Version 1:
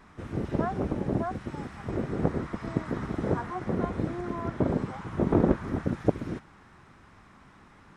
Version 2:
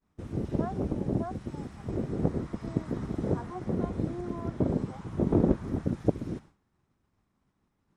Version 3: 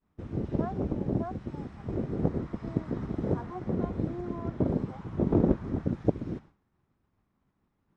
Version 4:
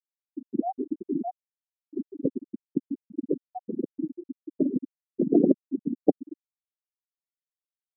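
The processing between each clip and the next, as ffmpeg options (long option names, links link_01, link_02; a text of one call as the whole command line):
ffmpeg -i in.wav -af "agate=range=-33dB:threshold=-42dB:ratio=3:detection=peak,equalizer=frequency=1600:width=0.6:gain=-10" out.wav
ffmpeg -i in.wav -af "adynamicsmooth=sensitivity=6.5:basefreq=4400" out.wav
ffmpeg -i in.wav -af "highpass=260,equalizer=frequency=280:width_type=q:width=4:gain=5,equalizer=frequency=760:width_type=q:width=4:gain=4,equalizer=frequency=1900:width_type=q:width=4:gain=6,lowpass=frequency=3600:width=0.5412,lowpass=frequency=3600:width=1.3066,afftfilt=real='re*gte(hypot(re,im),0.2)':imag='im*gte(hypot(re,im),0.2)':win_size=1024:overlap=0.75,volume=5.5dB" out.wav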